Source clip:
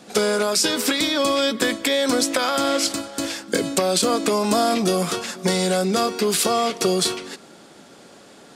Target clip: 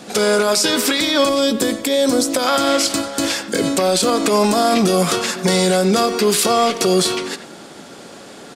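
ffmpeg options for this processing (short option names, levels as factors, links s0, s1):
-filter_complex "[0:a]asettb=1/sr,asplit=3[s0][s1][s2];[s0]atrim=end=1.294[s3];[s1]atrim=start=1.29:end=2.47,asetpts=PTS-STARTPTS,afade=t=in:d=0.004:c=qsin,afade=t=out:st=1.176:d=0.004:c=qsin,equalizer=f=1900:w=0.58:g=-10.5[s4];[s2]atrim=start=2.466[s5];[s3][s4]acrossfade=d=0.004:c1=hsin:c2=qsin[s6];[s6][s5]acrossfade=d=0.004:c1=qsin:c2=hsin,alimiter=limit=0.168:level=0:latency=1:release=111,asplit=2[s7][s8];[s8]adelay=90,highpass=300,lowpass=3400,asoftclip=type=hard:threshold=0.0562,volume=0.282[s9];[s7][s9]amix=inputs=2:normalize=0,volume=2.66"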